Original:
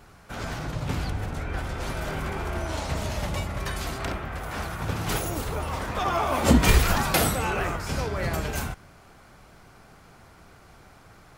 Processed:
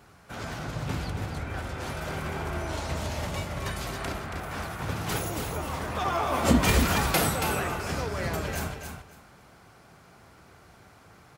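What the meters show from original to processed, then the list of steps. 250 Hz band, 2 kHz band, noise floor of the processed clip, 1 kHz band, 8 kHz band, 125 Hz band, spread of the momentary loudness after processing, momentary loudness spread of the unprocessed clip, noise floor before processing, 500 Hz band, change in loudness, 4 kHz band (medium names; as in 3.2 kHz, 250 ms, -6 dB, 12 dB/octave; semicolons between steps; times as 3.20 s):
-1.5 dB, -1.5 dB, -55 dBFS, -1.5 dB, -1.5 dB, -3.0 dB, 12 LU, 12 LU, -52 dBFS, -1.5 dB, -2.0 dB, -1.5 dB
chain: high-pass 65 Hz; on a send: feedback delay 278 ms, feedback 18%, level -6.5 dB; on the sum: trim -2.5 dB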